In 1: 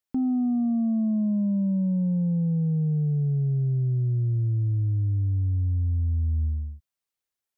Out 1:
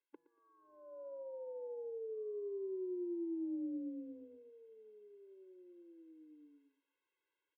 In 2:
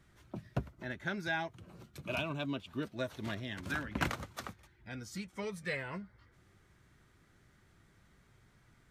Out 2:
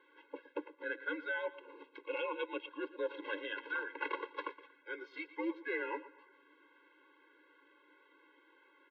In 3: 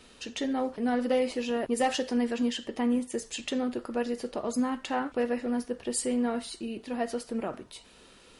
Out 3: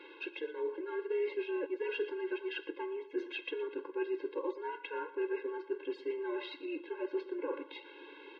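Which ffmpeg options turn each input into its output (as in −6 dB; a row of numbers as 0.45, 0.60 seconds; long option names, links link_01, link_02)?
-af "highpass=frequency=270:width_type=q:width=0.5412,highpass=frequency=270:width_type=q:width=1.307,lowpass=frequency=3300:width_type=q:width=0.5176,lowpass=frequency=3300:width_type=q:width=0.7071,lowpass=frequency=3300:width_type=q:width=1.932,afreqshift=-97,areverse,acompressor=threshold=-41dB:ratio=5,areverse,aecho=1:1:117|234|351:0.15|0.0464|0.0144,afftfilt=real='re*eq(mod(floor(b*sr/1024/280),2),1)':imag='im*eq(mod(floor(b*sr/1024/280),2),1)':win_size=1024:overlap=0.75,volume=8.5dB"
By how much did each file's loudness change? −18.0, −1.0, −8.0 LU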